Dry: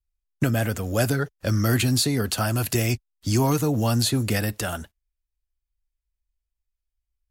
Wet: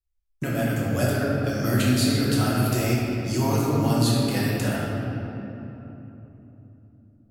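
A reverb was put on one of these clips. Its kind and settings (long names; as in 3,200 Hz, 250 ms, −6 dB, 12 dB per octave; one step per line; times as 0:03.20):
rectangular room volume 190 cubic metres, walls hard, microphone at 1 metre
level −7.5 dB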